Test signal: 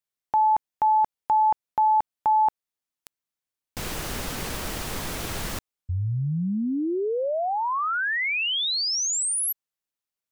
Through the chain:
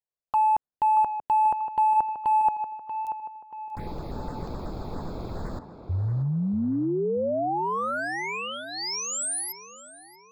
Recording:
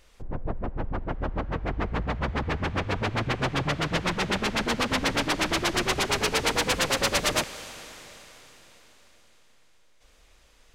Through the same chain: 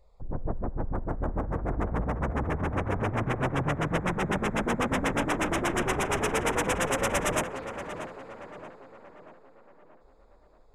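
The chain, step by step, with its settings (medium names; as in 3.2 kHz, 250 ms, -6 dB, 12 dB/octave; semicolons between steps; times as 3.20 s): local Wiener filter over 15 samples; touch-sensitive phaser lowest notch 250 Hz, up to 4.4 kHz, full sweep at -26.5 dBFS; tape echo 634 ms, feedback 53%, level -8 dB, low-pass 2.2 kHz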